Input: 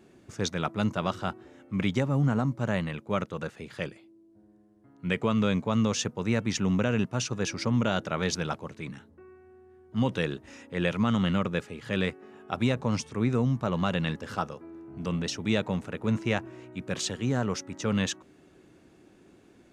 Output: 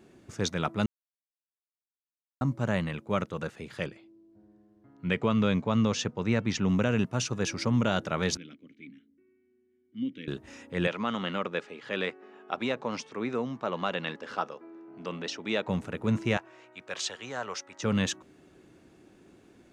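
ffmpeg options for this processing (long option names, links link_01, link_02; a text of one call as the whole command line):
ffmpeg -i in.wav -filter_complex "[0:a]asettb=1/sr,asplit=3[link_01][link_02][link_03];[link_01]atrim=end=3.864[link_04];[link_02]atrim=start=3.86:end=6.69,asetpts=PTS-STARTPTS,afade=type=in:duration=0.004:curve=qsin,afade=type=out:start_time=2.826:duration=0.004:curve=qsin,lowpass=5600[link_05];[link_03]atrim=start=6.686[link_06];[link_04][link_05]acrossfade=duration=0.004:curve1=hsin:curve2=qsin[link_07];[link_07][link_06]acrossfade=duration=0.004:curve1=qsin:curve2=hsin,asettb=1/sr,asplit=3[link_08][link_09][link_10];[link_08]atrim=end=8.374[link_11];[link_09]atrim=start=8.37:end=10.28,asetpts=PTS-STARTPTS,afade=type=in:duration=0.004:curve=qsin,afade=type=out:start_time=1.906:duration=0.004:curve=qsin,asplit=3[link_12][link_13][link_14];[link_12]bandpass=frequency=270:width_type=q:width=8,volume=0dB[link_15];[link_13]bandpass=frequency=2290:width_type=q:width=8,volume=-6dB[link_16];[link_14]bandpass=frequency=3010:width_type=q:width=8,volume=-9dB[link_17];[link_15][link_16][link_17]amix=inputs=3:normalize=0[link_18];[link_10]atrim=start=10.276[link_19];[link_11][link_18]acrossfade=duration=0.004:curve1=hsin:curve2=qsin[link_20];[link_20][link_19]acrossfade=duration=0.004:curve1=qsin:curve2=hsin,asettb=1/sr,asplit=3[link_21][link_22][link_23];[link_21]atrim=end=10.874[link_24];[link_22]atrim=start=10.87:end=15.68,asetpts=PTS-STARTPTS,afade=type=in:duration=0.004:curve=qsin,afade=type=out:start_time=4.806:duration=0.004:curve=qsin,highpass=330,lowpass=4800[link_25];[link_23]atrim=start=15.676[link_26];[link_24][link_25]acrossfade=duration=0.004:curve1=hsin:curve2=qsin[link_27];[link_27][link_26]acrossfade=duration=0.004:curve1=qsin:curve2=hsin,asettb=1/sr,asplit=3[link_28][link_29][link_30];[link_28]atrim=end=16.374[link_31];[link_29]atrim=start=16.37:end=17.83,asetpts=PTS-STARTPTS,afade=type=in:duration=0.004:curve=qsin,afade=type=out:start_time=1.456:duration=0.004:curve=qsin,acrossover=split=510 7700:gain=0.0891 1 0.224[link_32][link_33][link_34];[link_32][link_33][link_34]amix=inputs=3:normalize=0[link_35];[link_30]atrim=start=17.826[link_36];[link_31][link_35]acrossfade=duration=0.004:curve1=hsin:curve2=qsin[link_37];[link_37][link_36]acrossfade=duration=0.004:curve1=qsin:curve2=hsin,asplit=3[link_38][link_39][link_40];[link_38]atrim=end=0.86,asetpts=PTS-STARTPTS,afade=type=out:start_time=0.856:duration=0.004:curve=hsin[link_41];[link_39]atrim=start=0.86:end=2.41,asetpts=PTS-STARTPTS,volume=0[link_42];[link_40]atrim=start=2.41,asetpts=PTS-STARTPTS,afade=type=in:duration=0.004:curve=hsin[link_43];[link_41][link_42][link_43]concat=n=3:v=0:a=1" out.wav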